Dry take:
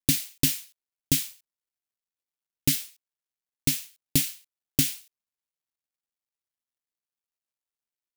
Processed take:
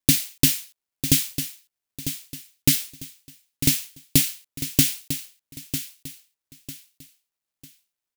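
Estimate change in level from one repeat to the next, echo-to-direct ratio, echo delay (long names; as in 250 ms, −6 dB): −10.0 dB, −10.0 dB, 949 ms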